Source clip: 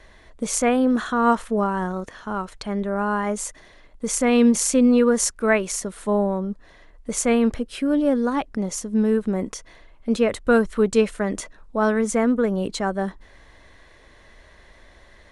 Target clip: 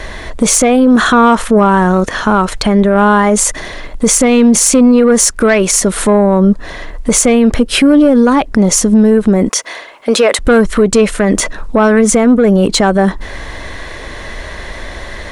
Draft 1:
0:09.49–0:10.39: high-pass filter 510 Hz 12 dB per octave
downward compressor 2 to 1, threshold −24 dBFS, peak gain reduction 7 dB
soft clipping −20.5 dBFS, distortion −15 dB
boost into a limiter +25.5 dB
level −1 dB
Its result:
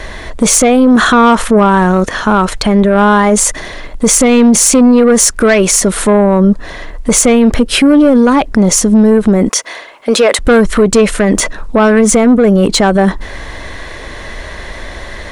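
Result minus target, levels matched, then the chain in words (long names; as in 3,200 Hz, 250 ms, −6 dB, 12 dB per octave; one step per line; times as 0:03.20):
downward compressor: peak gain reduction −3 dB
0:09.49–0:10.39: high-pass filter 510 Hz 12 dB per octave
downward compressor 2 to 1, threshold −30.5 dBFS, peak gain reduction 10 dB
soft clipping −20.5 dBFS, distortion −19 dB
boost into a limiter +25.5 dB
level −1 dB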